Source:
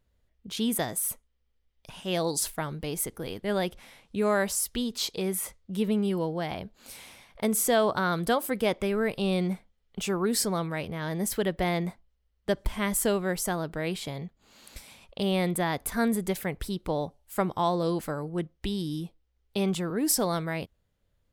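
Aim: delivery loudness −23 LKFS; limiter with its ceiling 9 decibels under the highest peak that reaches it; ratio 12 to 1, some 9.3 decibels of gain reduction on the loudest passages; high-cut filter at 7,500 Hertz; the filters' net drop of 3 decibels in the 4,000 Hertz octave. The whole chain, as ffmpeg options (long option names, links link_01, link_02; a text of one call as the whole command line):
ffmpeg -i in.wav -af "lowpass=7500,equalizer=frequency=4000:width_type=o:gain=-3.5,acompressor=threshold=-29dB:ratio=12,volume=14dB,alimiter=limit=-12.5dB:level=0:latency=1" out.wav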